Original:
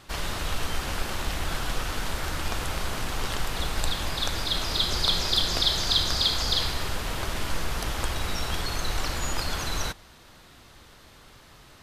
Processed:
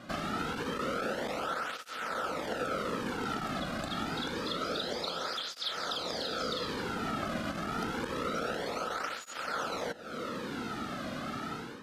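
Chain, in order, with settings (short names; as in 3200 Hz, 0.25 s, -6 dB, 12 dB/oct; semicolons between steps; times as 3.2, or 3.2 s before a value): AGC gain up to 12 dB; soft clip -10 dBFS, distortion -18 dB; low shelf 230 Hz -5.5 dB; small resonant body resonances 230/480/1300 Hz, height 14 dB, ringing for 20 ms; compressor 12:1, threshold -28 dBFS, peak gain reduction 17.5 dB; high shelf 7900 Hz -11 dB; tape flanging out of phase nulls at 0.27 Hz, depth 2.3 ms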